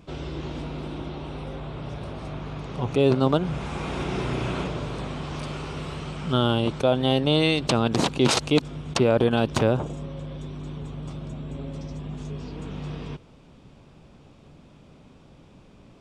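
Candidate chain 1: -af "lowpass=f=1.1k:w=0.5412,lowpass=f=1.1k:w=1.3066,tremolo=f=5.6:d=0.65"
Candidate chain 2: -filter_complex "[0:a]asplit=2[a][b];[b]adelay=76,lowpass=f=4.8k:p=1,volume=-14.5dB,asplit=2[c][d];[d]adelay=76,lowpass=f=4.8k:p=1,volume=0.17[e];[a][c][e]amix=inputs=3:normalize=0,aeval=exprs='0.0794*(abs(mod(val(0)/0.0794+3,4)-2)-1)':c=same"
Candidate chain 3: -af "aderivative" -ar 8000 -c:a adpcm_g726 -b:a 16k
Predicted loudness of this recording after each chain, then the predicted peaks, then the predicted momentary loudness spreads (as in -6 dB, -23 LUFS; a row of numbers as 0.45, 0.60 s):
-30.0, -31.0, -40.5 LUFS; -9.0, -22.0, -19.5 dBFS; 15, 9, 23 LU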